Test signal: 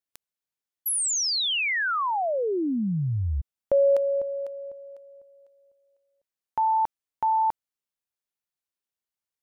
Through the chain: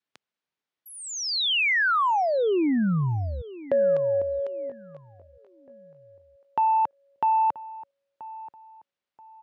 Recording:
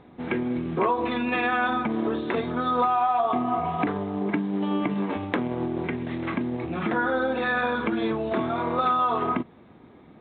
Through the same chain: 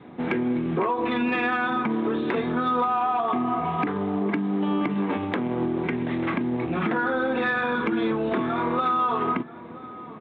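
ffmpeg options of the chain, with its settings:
ffmpeg -i in.wav -filter_complex "[0:a]adynamicequalizer=threshold=0.01:dfrequency=640:dqfactor=2.5:tfrequency=640:tqfactor=2.5:attack=5:release=100:ratio=0.375:range=3.5:mode=cutabove:tftype=bell,acompressor=threshold=-25dB:ratio=6:attack=5.2:release=364:knee=6:detection=rms,asoftclip=type=tanh:threshold=-20dB,highpass=120,lowpass=3700,asplit=2[link_01][link_02];[link_02]adelay=981,lowpass=frequency=1800:poles=1,volume=-17dB,asplit=2[link_03][link_04];[link_04]adelay=981,lowpass=frequency=1800:poles=1,volume=0.34,asplit=2[link_05][link_06];[link_06]adelay=981,lowpass=frequency=1800:poles=1,volume=0.34[link_07];[link_01][link_03][link_05][link_07]amix=inputs=4:normalize=0,volume=7dB" out.wav

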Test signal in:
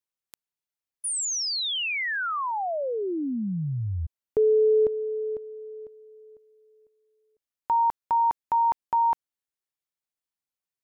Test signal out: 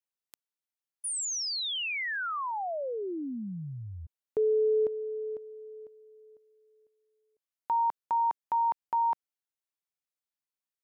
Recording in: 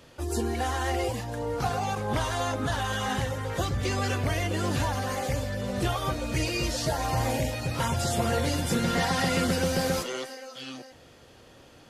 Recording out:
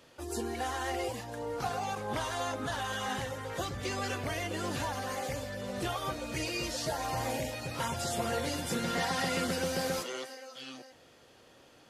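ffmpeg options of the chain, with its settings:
ffmpeg -i in.wav -af "lowshelf=frequency=140:gain=-11,volume=-4.5dB" out.wav

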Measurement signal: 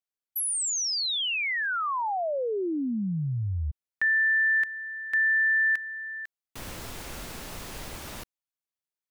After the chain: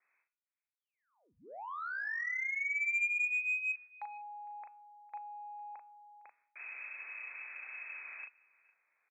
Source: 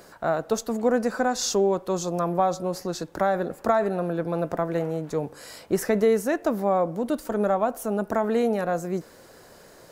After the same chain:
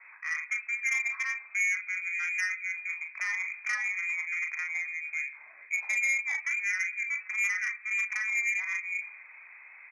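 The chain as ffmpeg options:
ffmpeg -i in.wav -filter_complex "[0:a]adynamicequalizer=threshold=0.0126:dfrequency=200:dqfactor=1.8:tfrequency=200:tqfactor=1.8:attack=5:release=100:ratio=0.375:range=2:mode=boostabove:tftype=bell,areverse,acompressor=mode=upward:threshold=-32dB:ratio=2.5:attack=2.8:release=85:knee=2.83:detection=peak,areverse,aecho=1:1:457:0.0668,lowpass=frequency=2200:width_type=q:width=0.5098,lowpass=frequency=2200:width_type=q:width=0.6013,lowpass=frequency=2200:width_type=q:width=0.9,lowpass=frequency=2200:width_type=q:width=2.563,afreqshift=-2600,asplit=2[link_01][link_02];[link_02]adelay=38,volume=-5dB[link_03];[link_01][link_03]amix=inputs=2:normalize=0,bandreject=frequency=241.9:width_type=h:width=4,bandreject=frequency=483.8:width_type=h:width=4,bandreject=frequency=725.7:width_type=h:width=4,bandreject=frequency=967.6:width_type=h:width=4,bandreject=frequency=1209.5:width_type=h:width=4,bandreject=frequency=1451.4:width_type=h:width=4,bandreject=frequency=1693.3:width_type=h:width=4,bandreject=frequency=1935.2:width_type=h:width=4,bandreject=frequency=2177.1:width_type=h:width=4,bandreject=frequency=2419:width_type=h:width=4,bandreject=frequency=2660.9:width_type=h:width=4,bandreject=frequency=2902.8:width_type=h:width=4,bandreject=frequency=3144.7:width_type=h:width=4,bandreject=frequency=3386.6:width_type=h:width=4,bandreject=frequency=3628.5:width_type=h:width=4,bandreject=frequency=3870.4:width_type=h:width=4,bandreject=frequency=4112.3:width_type=h:width=4,bandreject=frequency=4354.2:width_type=h:width=4,bandreject=frequency=4596.1:width_type=h:width=4,bandreject=frequency=4838:width_type=h:width=4,bandreject=frequency=5079.9:width_type=h:width=4,bandreject=frequency=5321.8:width_type=h:width=4,bandreject=frequency=5563.7:width_type=h:width=4,bandreject=frequency=5805.6:width_type=h:width=4,bandreject=frequency=6047.5:width_type=h:width=4,bandreject=frequency=6289.4:width_type=h:width=4,bandreject=frequency=6531.3:width_type=h:width=4,bandreject=frequency=6773.2:width_type=h:width=4,bandreject=frequency=7015.1:width_type=h:width=4,bandreject=frequency=7257:width_type=h:width=4,bandreject=frequency=7498.9:width_type=h:width=4,bandreject=frequency=7740.8:width_type=h:width=4,asoftclip=type=tanh:threshold=-12.5dB,aderivative,volume=2dB" out.wav

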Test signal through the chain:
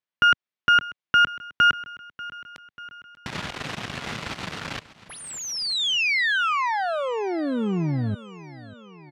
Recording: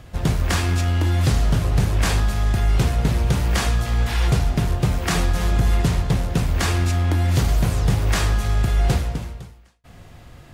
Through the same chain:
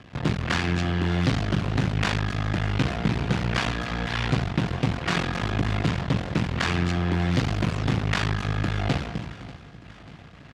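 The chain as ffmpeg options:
ffmpeg -i in.wav -af "equalizer=frequency=460:width=0.48:gain=-7,aeval=exprs='max(val(0),0)':channel_layout=same,highpass=130,lowpass=3400,aecho=1:1:590|1180|1770|2360|2950:0.119|0.0713|0.0428|0.0257|0.0154,volume=6dB" out.wav

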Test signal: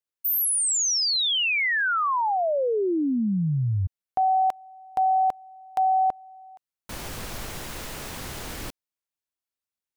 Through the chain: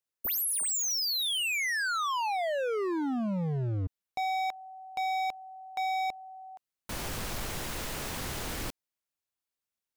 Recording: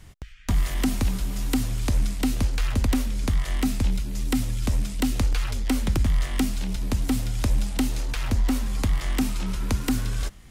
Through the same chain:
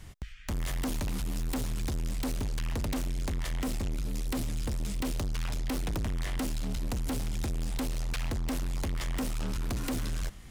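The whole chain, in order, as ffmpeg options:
ffmpeg -i in.wav -af "asoftclip=type=hard:threshold=-29.5dB" out.wav

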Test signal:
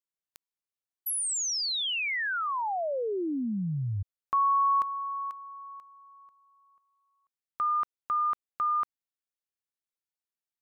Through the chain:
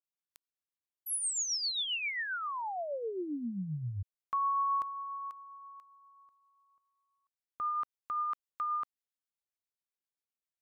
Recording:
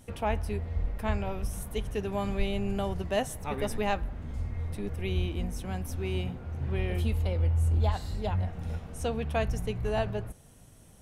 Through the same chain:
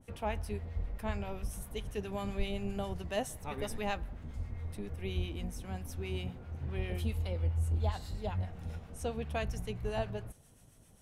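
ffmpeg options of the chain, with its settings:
ffmpeg -i in.wav -filter_complex "[0:a]acrossover=split=980[link_01][link_02];[link_01]aeval=exprs='val(0)*(1-0.5/2+0.5/2*cos(2*PI*7.5*n/s))':channel_layout=same[link_03];[link_02]aeval=exprs='val(0)*(1-0.5/2-0.5/2*cos(2*PI*7.5*n/s))':channel_layout=same[link_04];[link_03][link_04]amix=inputs=2:normalize=0,adynamicequalizer=threshold=0.00501:dfrequency=2400:dqfactor=0.7:tfrequency=2400:tqfactor=0.7:attack=5:release=100:ratio=0.375:range=1.5:mode=boostabove:tftype=highshelf,volume=-4dB" out.wav

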